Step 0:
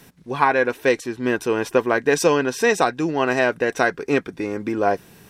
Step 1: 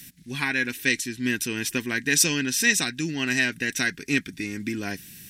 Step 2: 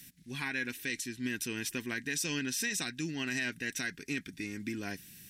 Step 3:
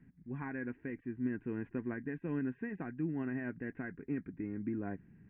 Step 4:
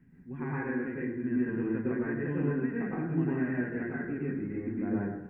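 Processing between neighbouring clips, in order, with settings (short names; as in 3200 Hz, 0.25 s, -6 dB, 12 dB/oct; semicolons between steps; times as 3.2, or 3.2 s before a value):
EQ curve 270 Hz 0 dB, 510 Hz -20 dB, 1200 Hz -16 dB, 1800 Hz +3 dB, 12000 Hz +12 dB; gain -1.5 dB
limiter -16 dBFS, peak gain reduction 10 dB; gain -8 dB
Gaussian blur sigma 6.7 samples; gain +1.5 dB
plate-style reverb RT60 0.91 s, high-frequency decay 0.35×, pre-delay 90 ms, DRR -6 dB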